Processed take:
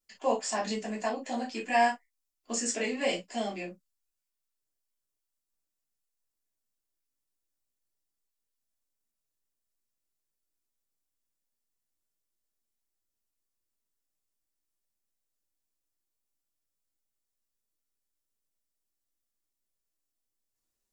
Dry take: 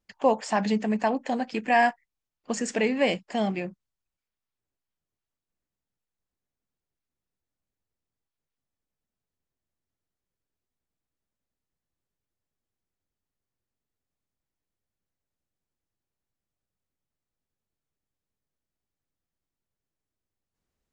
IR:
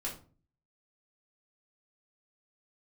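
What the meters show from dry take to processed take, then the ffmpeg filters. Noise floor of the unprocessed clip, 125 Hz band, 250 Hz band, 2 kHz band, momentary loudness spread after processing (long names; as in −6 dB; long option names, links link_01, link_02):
below −85 dBFS, −11.5 dB, −8.5 dB, −5.0 dB, 10 LU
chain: -filter_complex "[0:a]bass=frequency=250:gain=-6,treble=frequency=4000:gain=14[link_01];[1:a]atrim=start_sample=2205,atrim=end_sample=3087[link_02];[link_01][link_02]afir=irnorm=-1:irlink=0,volume=-7dB"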